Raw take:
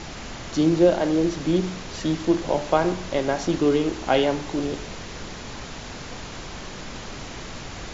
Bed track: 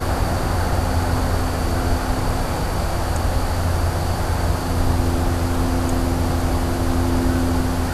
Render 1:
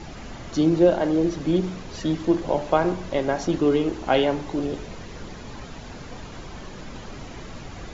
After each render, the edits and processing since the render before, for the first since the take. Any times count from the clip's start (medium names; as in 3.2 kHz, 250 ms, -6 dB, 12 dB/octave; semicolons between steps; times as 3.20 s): noise reduction 8 dB, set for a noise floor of -37 dBFS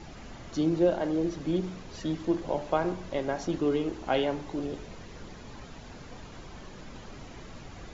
trim -7 dB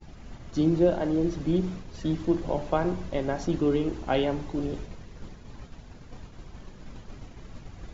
expander -38 dBFS; bass shelf 200 Hz +9.5 dB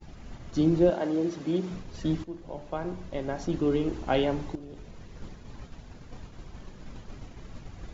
0.90–1.71 s: Bessel high-pass 250 Hz; 2.24–3.99 s: fade in, from -16.5 dB; 4.55–5.16 s: compression 8:1, threshold -39 dBFS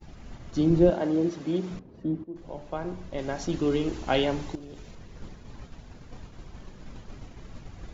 0.70–1.29 s: bass shelf 260 Hz +6.5 dB; 1.79–2.36 s: band-pass filter 290 Hz, Q 0.89; 3.18–4.95 s: treble shelf 2.1 kHz +7.5 dB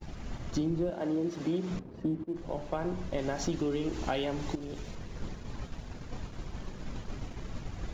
compression 10:1, threshold -31 dBFS, peak gain reduction 17.5 dB; waveshaping leveller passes 1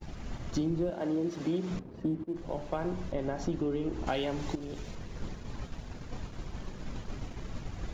3.12–4.07 s: treble shelf 2 kHz -11 dB